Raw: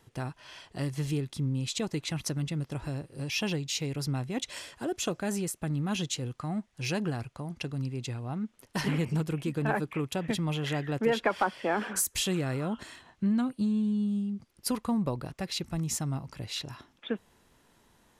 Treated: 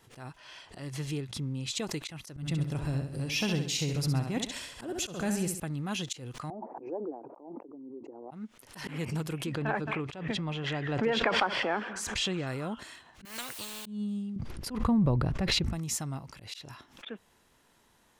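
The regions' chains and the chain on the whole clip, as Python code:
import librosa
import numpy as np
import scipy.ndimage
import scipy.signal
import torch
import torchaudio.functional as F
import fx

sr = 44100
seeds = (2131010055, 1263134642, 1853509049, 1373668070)

y = fx.chain(x, sr, fx.high_shelf(hz=11000.0, db=-9.0),
    fx.hum_notches(base_hz=60, count=3), at=(0.38, 1.71))
y = fx.chain(y, sr, fx.low_shelf(hz=200.0, db=10.5),
    fx.echo_feedback(ms=67, feedback_pct=42, wet_db=-7.0), at=(2.36, 5.6))
y = fx.chain(y, sr, fx.envelope_sharpen(power=1.5),
    fx.ellip_bandpass(low_hz=290.0, high_hz=900.0, order=3, stop_db=60),
    fx.pre_swell(db_per_s=22.0), at=(6.5, 8.31))
y = fx.chain(y, sr, fx.air_absorb(metres=120.0),
    fx.echo_single(ms=218, db=-22.0),
    fx.pre_swell(db_per_s=32.0), at=(9.46, 12.47))
y = fx.chain(y, sr, fx.low_shelf(hz=100.0, db=-9.0),
    fx.quant_dither(seeds[0], bits=10, dither='triangular'),
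    fx.spectral_comp(ratio=4.0), at=(13.25, 13.86))
y = fx.chain(y, sr, fx.riaa(side='playback'),
    fx.sustainer(db_per_s=22.0), at=(14.36, 15.73))
y = fx.low_shelf(y, sr, hz=490.0, db=-5.0)
y = fx.auto_swell(y, sr, attack_ms=164.0)
y = fx.pre_swell(y, sr, db_per_s=110.0)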